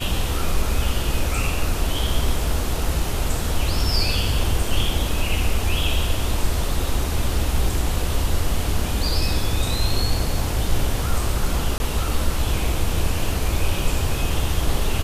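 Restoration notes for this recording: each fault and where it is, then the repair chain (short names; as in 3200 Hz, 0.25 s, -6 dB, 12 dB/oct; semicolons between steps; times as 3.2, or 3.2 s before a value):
11.78–11.8 gap 20 ms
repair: interpolate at 11.78, 20 ms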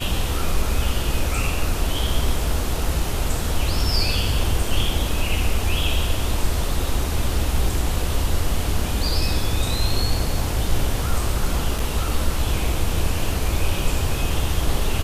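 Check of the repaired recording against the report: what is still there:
none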